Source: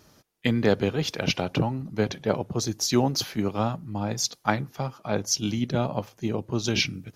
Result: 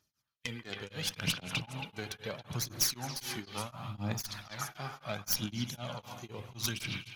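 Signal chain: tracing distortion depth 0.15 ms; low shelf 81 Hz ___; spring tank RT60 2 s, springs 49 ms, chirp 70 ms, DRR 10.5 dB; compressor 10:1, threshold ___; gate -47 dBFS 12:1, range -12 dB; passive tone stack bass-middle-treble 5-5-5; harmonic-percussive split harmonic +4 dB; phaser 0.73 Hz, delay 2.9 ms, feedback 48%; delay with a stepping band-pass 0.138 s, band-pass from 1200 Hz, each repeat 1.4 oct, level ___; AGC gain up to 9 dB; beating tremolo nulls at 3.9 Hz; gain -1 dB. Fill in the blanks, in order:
-7 dB, -27 dBFS, -3.5 dB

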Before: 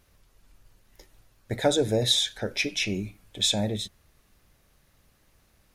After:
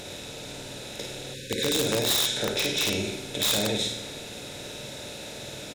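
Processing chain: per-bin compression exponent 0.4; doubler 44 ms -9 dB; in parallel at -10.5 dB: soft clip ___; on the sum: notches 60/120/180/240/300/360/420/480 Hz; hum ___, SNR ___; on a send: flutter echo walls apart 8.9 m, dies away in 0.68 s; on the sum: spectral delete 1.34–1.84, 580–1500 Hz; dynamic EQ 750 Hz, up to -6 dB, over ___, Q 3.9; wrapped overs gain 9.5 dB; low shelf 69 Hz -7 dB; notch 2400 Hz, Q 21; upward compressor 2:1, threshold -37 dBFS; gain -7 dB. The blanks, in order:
-18.5 dBFS, 60 Hz, 30 dB, -42 dBFS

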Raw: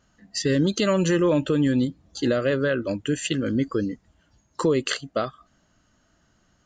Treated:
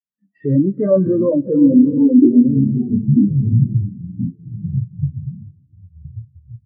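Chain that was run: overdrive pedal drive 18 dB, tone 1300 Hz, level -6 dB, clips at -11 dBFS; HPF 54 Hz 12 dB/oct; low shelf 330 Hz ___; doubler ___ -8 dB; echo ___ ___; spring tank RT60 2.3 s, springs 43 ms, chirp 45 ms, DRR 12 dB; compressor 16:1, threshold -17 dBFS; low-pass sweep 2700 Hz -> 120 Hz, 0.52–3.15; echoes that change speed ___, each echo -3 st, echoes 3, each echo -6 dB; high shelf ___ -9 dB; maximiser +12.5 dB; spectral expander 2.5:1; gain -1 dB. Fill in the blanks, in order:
+10 dB, 21 ms, 0.384 s, -14.5 dB, 0.525 s, 2600 Hz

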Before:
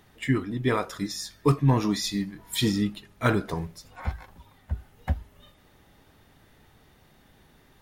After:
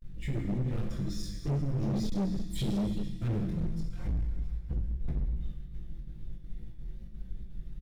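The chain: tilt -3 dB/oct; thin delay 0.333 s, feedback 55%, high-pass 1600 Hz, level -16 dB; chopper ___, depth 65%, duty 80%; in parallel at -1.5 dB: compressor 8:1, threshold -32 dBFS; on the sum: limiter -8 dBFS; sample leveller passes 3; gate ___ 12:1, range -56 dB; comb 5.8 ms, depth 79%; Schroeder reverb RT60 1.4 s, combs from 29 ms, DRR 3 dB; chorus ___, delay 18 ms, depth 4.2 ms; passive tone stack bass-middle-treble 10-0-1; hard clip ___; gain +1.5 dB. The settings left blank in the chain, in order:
2.8 Hz, -40 dBFS, 2.4 Hz, -28.5 dBFS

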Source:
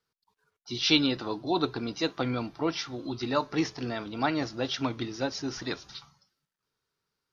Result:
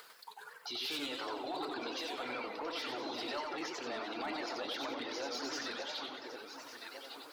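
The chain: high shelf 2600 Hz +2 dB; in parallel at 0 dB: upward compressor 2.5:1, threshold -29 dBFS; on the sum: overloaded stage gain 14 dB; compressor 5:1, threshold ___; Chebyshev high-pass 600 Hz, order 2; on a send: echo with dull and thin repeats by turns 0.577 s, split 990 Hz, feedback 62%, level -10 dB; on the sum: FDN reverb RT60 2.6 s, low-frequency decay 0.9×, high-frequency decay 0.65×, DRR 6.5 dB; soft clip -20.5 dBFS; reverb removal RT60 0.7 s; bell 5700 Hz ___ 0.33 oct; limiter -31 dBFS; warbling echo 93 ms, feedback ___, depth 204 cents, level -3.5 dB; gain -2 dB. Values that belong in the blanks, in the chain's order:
-23 dBFS, -10 dB, 42%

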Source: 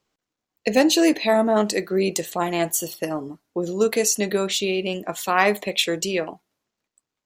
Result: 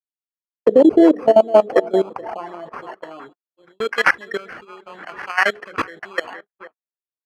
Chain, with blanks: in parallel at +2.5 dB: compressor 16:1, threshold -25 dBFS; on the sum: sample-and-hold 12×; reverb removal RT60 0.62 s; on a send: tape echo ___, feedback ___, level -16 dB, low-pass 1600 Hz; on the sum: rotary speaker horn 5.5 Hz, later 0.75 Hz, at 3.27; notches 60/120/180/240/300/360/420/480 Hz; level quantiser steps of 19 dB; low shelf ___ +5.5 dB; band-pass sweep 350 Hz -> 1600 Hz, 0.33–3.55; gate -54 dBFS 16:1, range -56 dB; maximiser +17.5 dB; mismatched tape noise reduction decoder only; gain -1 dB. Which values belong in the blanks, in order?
0.463 s, 57%, 83 Hz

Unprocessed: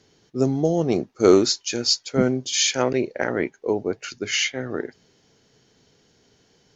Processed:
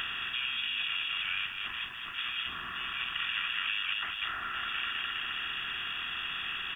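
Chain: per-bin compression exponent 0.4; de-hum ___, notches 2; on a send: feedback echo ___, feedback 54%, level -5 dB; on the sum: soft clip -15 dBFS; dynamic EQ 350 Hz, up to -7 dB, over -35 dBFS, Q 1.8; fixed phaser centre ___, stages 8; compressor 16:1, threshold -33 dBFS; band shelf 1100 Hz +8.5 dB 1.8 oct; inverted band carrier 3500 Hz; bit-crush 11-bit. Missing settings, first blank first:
66.1 Hz, 0.207 s, 2000 Hz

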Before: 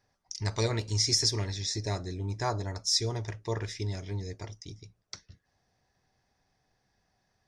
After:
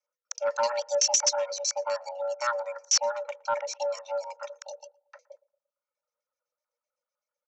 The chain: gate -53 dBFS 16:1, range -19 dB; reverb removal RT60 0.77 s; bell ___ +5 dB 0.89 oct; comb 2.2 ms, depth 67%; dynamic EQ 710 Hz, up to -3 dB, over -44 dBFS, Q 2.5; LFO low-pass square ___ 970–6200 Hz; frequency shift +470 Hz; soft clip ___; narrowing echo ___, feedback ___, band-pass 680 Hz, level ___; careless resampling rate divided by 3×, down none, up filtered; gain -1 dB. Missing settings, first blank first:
130 Hz, 7.9 Hz, -14 dBFS, 0.115 s, 41%, -22 dB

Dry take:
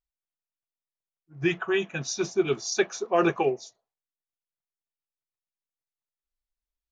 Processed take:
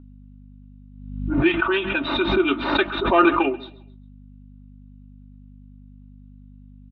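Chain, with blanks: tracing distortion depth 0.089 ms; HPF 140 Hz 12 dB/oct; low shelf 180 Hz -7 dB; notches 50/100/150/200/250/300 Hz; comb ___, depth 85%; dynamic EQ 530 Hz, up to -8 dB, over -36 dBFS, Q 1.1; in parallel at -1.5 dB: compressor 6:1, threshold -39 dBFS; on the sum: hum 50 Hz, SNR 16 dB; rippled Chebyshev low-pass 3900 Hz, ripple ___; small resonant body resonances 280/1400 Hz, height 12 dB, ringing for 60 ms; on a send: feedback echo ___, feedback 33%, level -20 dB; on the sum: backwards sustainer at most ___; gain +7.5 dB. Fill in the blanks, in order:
3.3 ms, 6 dB, 0.134 s, 59 dB/s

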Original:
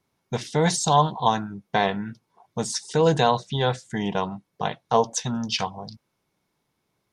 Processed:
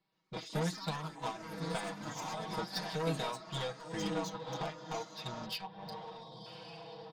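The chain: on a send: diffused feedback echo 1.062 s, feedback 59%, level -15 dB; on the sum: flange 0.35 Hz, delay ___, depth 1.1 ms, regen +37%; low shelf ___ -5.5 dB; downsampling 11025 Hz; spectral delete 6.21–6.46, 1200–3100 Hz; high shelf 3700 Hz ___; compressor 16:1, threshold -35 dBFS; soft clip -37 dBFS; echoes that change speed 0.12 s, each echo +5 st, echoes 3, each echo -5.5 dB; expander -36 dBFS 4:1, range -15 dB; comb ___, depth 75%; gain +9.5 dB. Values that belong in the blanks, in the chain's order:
5.1 ms, 140 Hz, +6.5 dB, 6.3 ms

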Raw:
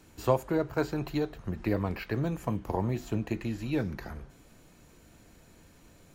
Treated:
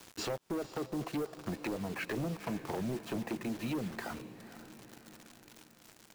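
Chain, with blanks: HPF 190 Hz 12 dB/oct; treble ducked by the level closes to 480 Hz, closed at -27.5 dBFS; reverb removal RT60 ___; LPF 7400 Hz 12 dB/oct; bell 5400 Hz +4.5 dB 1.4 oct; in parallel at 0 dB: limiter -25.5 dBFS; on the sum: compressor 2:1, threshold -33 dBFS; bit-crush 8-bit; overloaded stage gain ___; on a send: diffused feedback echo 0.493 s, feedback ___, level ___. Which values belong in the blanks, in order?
0.79 s, 31.5 dB, 55%, -13.5 dB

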